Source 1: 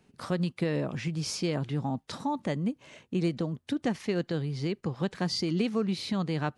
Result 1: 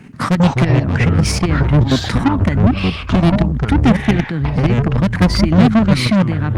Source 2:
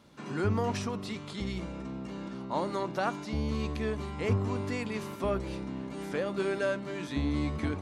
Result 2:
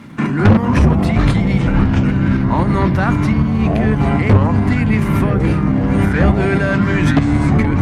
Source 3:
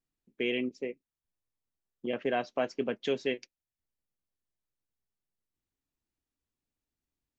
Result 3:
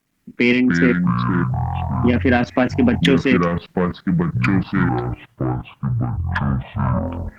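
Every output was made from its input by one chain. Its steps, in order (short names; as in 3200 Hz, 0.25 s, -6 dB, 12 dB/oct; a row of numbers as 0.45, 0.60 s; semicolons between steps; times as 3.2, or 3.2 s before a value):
ten-band EQ 125 Hz +10 dB, 250 Hz +11 dB, 500 Hz -4 dB, 1000 Hz +3 dB, 2000 Hz +11 dB, 4000 Hz -4 dB; level quantiser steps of 19 dB; soft clip -29 dBFS; tremolo saw up 3.8 Hz, depth 40%; echoes that change speed 0.13 s, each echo -6 st, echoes 3; Opus 48 kbps 48000 Hz; normalise peaks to -2 dBFS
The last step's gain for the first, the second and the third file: +21.5, +24.0, +26.0 dB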